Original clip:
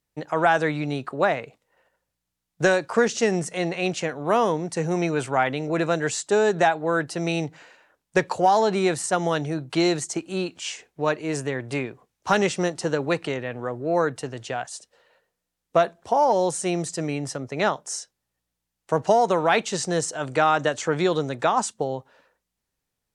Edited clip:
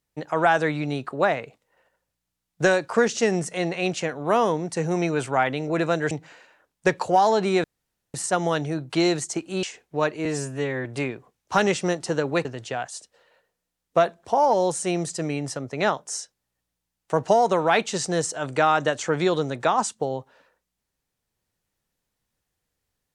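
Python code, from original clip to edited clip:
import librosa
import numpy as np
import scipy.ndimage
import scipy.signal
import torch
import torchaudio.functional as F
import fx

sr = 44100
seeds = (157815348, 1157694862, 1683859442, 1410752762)

y = fx.edit(x, sr, fx.cut(start_s=6.11, length_s=1.3),
    fx.insert_room_tone(at_s=8.94, length_s=0.5),
    fx.cut(start_s=10.43, length_s=0.25),
    fx.stretch_span(start_s=11.3, length_s=0.3, factor=2.0),
    fx.cut(start_s=13.2, length_s=1.04), tone=tone)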